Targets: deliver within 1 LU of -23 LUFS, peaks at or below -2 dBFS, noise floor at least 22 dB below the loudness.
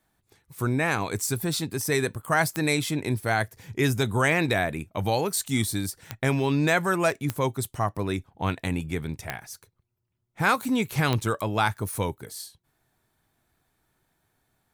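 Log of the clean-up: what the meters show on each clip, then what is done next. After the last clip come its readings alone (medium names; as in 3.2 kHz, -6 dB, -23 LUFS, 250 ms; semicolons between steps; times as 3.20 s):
clicks found 5; loudness -26.5 LUFS; peak level -8.0 dBFS; loudness target -23.0 LUFS
-> de-click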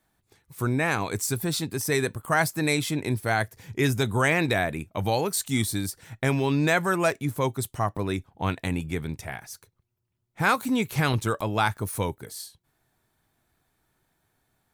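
clicks found 0; loudness -26.5 LUFS; peak level -8.0 dBFS; loudness target -23.0 LUFS
-> trim +3.5 dB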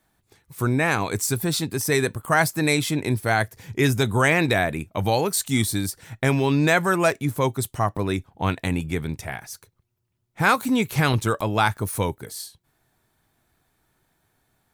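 loudness -22.5 LUFS; peak level -4.5 dBFS; noise floor -71 dBFS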